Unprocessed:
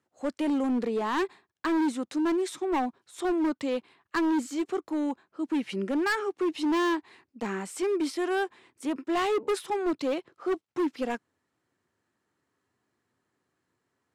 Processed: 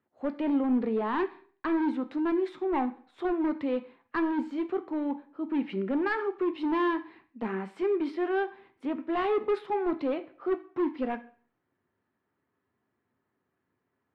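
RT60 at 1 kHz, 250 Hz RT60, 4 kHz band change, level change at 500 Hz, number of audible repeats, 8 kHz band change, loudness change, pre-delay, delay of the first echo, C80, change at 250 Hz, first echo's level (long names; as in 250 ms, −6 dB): 0.50 s, 0.55 s, −9.0 dB, −0.5 dB, no echo audible, below −25 dB, −1.0 dB, 3 ms, no echo audible, 19.5 dB, −1.0 dB, no echo audible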